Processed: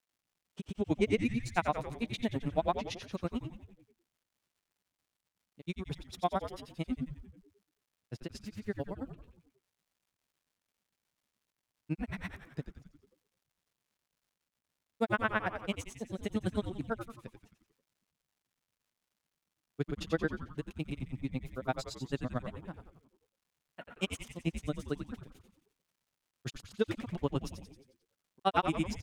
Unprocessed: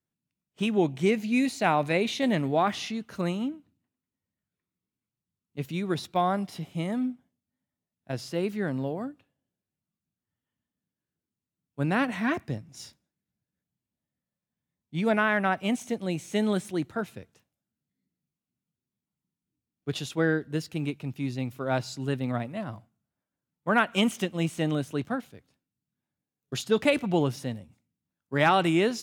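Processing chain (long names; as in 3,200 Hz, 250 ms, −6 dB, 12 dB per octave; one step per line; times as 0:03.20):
granular cloud 66 ms, grains 9 per second, pitch spread up and down by 0 semitones
on a send: echo with shifted repeats 89 ms, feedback 54%, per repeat −110 Hz, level −8 dB
on the sum: surface crackle 280 per second −65 dBFS
level −2.5 dB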